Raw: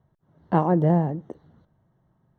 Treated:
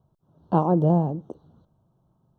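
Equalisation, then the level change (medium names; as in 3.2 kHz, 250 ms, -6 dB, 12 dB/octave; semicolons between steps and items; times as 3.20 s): Butterworth band-stop 2 kHz, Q 1.2; 0.0 dB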